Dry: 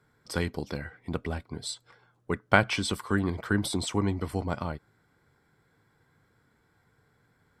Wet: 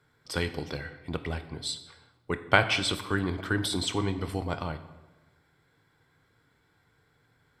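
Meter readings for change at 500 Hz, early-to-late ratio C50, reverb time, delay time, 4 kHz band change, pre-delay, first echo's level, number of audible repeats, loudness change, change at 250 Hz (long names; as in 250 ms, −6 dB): −0.5 dB, 12.5 dB, 1.1 s, no echo audible, +4.5 dB, 19 ms, no echo audible, no echo audible, 0.0 dB, −2.5 dB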